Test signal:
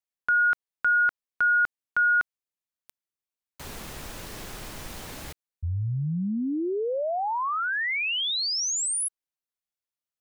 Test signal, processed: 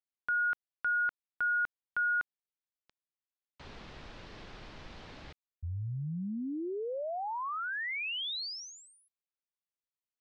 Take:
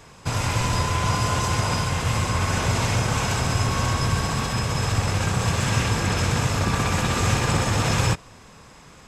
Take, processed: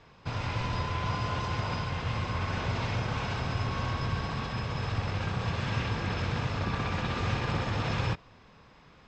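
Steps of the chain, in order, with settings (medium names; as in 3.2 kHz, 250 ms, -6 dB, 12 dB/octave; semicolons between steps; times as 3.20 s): low-pass 4.6 kHz 24 dB/octave; trim -8.5 dB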